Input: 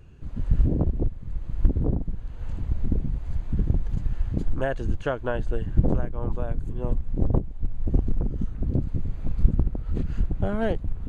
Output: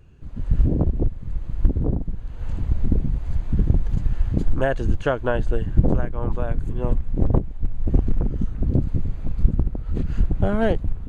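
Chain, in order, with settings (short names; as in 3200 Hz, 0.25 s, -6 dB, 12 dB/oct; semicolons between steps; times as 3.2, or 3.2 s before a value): 5.98–8.38 dynamic EQ 1900 Hz, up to +4 dB, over -51 dBFS, Q 0.77; AGC gain up to 7 dB; gain -1.5 dB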